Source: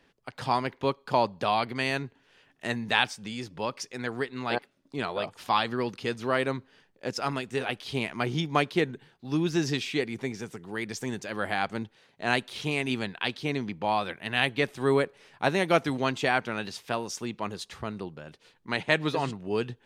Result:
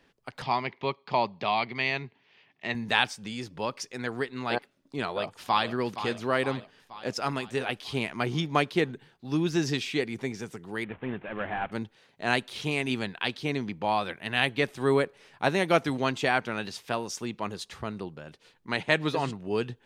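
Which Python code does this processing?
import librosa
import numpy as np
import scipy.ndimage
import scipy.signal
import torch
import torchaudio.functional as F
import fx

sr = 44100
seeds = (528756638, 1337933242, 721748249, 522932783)

y = fx.cabinet(x, sr, low_hz=130.0, low_slope=12, high_hz=5000.0, hz=(280.0, 510.0, 1500.0, 2200.0), db=(-7, -7, -9, 7), at=(0.42, 2.75))
y = fx.echo_throw(y, sr, start_s=5.05, length_s=0.64, ms=470, feedback_pct=60, wet_db=-11.0)
y = fx.cvsd(y, sr, bps=16000, at=(10.84, 11.72))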